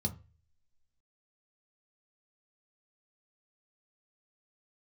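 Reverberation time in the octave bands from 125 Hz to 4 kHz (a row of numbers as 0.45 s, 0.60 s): 0.55 s, 0.30 s, 0.35 s, 0.30 s, 0.35 s, 0.25 s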